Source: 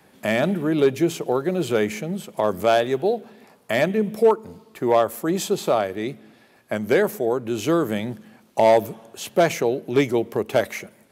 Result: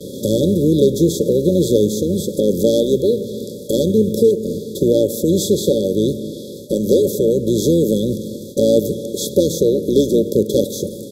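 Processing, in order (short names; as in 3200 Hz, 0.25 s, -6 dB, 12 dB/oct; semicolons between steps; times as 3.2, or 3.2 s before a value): per-bin compression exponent 0.6; gate with hold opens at -28 dBFS; in parallel at +1.5 dB: compressor 16:1, threshold -22 dBFS, peak gain reduction 14 dB; on the sum: bell 1300 Hz -3.5 dB 0.31 oct; harmoniser -12 st -10 dB; FFT band-reject 590–3300 Hz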